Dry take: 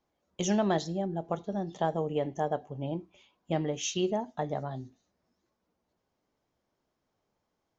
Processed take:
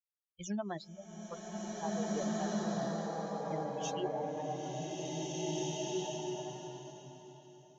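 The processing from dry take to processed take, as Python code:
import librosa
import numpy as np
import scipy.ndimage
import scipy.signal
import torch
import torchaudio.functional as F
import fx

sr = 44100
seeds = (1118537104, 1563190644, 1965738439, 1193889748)

y = fx.bin_expand(x, sr, power=3.0)
y = fx.rev_bloom(y, sr, seeds[0], attack_ms=2020, drr_db=-7.5)
y = y * librosa.db_to_amplitude(-6.5)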